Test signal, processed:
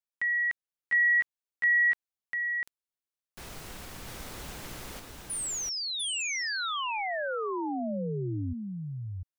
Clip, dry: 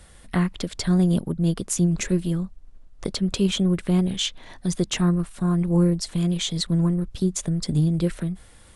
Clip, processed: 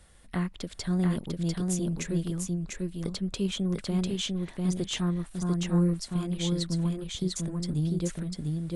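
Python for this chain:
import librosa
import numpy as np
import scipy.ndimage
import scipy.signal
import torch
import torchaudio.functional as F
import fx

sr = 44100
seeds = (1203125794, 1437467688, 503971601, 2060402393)

y = x + 10.0 ** (-3.0 / 20.0) * np.pad(x, (int(697 * sr / 1000.0), 0))[:len(x)]
y = y * 10.0 ** (-8.0 / 20.0)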